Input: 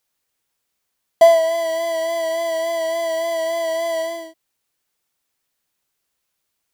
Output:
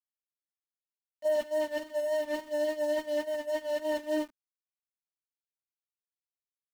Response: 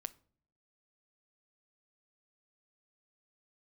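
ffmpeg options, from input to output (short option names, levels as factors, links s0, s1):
-filter_complex "[0:a]asetrate=40440,aresample=44100,atempo=1.09051,highshelf=f=3000:g=-11,bandreject=f=670:w=12,asplit=2[s0][s1];[s1]aecho=0:1:71|142|213|284:0.211|0.0824|0.0321|0.0125[s2];[s0][s2]amix=inputs=2:normalize=0,flanger=delay=20:depth=2.8:speed=0.36,areverse,acompressor=threshold=0.0282:ratio=8,areverse,anlmdn=0.0251,aeval=exprs='val(0)*gte(abs(val(0)),0.00891)':c=same,equalizer=f=250:w=1.5:g=9.5,agate=range=0.2:threshold=0.0251:ratio=16:detection=peak,volume=1.41"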